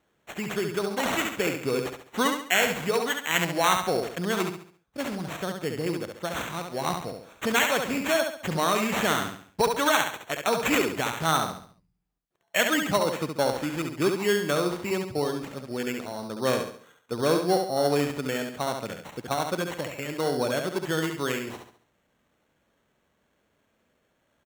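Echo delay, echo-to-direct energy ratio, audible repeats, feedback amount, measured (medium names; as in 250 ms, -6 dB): 69 ms, -5.0 dB, 4, 39%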